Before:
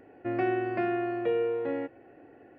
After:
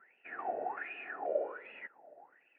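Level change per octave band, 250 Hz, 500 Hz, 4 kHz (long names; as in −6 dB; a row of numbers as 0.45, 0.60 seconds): −24.0 dB, −10.0 dB, can't be measured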